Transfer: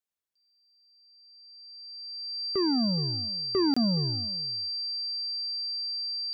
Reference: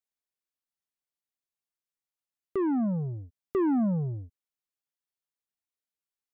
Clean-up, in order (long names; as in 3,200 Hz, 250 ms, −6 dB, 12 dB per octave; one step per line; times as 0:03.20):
notch filter 4,700 Hz, Q 30
repair the gap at 0:03.74, 25 ms
echo removal 420 ms −18.5 dB